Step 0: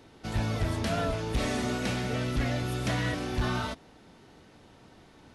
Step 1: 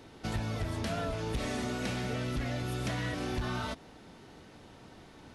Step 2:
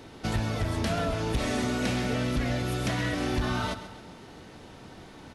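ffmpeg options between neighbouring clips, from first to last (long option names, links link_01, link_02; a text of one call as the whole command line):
ffmpeg -i in.wav -af "acompressor=threshold=-33dB:ratio=6,volume=2dB" out.wav
ffmpeg -i in.wav -af "aecho=1:1:133|266|399|532|665:0.237|0.109|0.0502|0.0231|0.0106,volume=5.5dB" out.wav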